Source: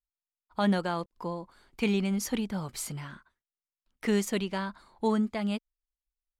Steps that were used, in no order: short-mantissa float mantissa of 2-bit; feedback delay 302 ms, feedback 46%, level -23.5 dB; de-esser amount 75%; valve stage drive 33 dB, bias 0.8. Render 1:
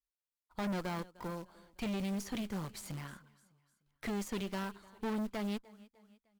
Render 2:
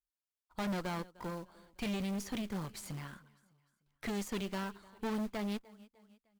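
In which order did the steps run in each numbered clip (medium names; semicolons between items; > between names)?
short-mantissa float > feedback delay > de-esser > valve stage; de-esser > feedback delay > valve stage > short-mantissa float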